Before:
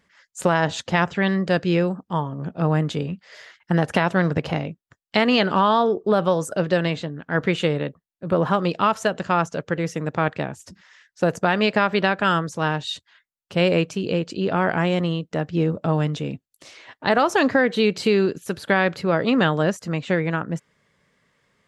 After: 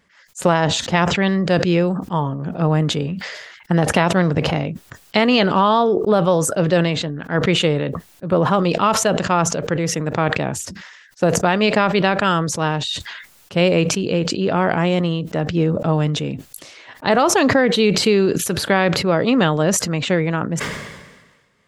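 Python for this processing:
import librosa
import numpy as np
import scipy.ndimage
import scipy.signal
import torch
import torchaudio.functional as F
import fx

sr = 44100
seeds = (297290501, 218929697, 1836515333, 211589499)

y = fx.dynamic_eq(x, sr, hz=1600.0, q=3.1, threshold_db=-37.0, ratio=4.0, max_db=-4)
y = fx.sustainer(y, sr, db_per_s=45.0)
y = y * 10.0 ** (3.0 / 20.0)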